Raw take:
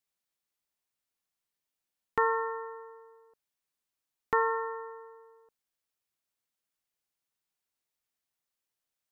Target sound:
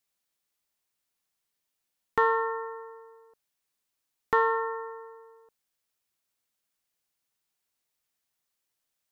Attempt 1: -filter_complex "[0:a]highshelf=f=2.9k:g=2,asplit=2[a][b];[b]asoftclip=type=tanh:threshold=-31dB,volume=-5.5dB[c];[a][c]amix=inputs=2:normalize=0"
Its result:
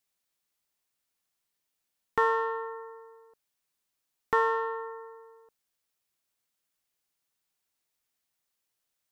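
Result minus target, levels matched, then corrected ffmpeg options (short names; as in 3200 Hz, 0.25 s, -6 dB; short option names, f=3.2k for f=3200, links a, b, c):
soft clip: distortion +9 dB
-filter_complex "[0:a]highshelf=f=2.9k:g=2,asplit=2[a][b];[b]asoftclip=type=tanh:threshold=-20.5dB,volume=-5.5dB[c];[a][c]amix=inputs=2:normalize=0"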